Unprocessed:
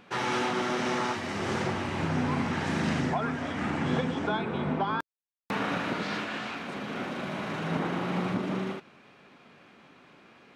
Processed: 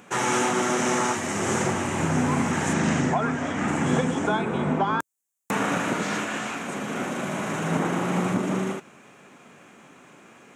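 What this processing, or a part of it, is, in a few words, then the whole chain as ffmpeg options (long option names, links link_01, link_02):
budget condenser microphone: -filter_complex "[0:a]highpass=93,highshelf=frequency=5700:width_type=q:width=3:gain=8,asettb=1/sr,asplit=3[link_01][link_02][link_03];[link_01]atrim=end=2.734[link_04];[link_02]atrim=start=2.73:end=3.68,asetpts=PTS-STARTPTS,afade=type=in:duration=0.004:curve=qsin,afade=type=out:start_time=0.946:duration=0.004:curve=qsin,lowpass=6200[link_05];[link_03]atrim=start=3.676[link_06];[link_04][link_05]acrossfade=duration=0.004:curve1=hsin:curve2=qsin[link_07];[link_07][link_06]acrossfade=duration=0.004:curve1=qsin:curve2=hsin,volume=5.5dB"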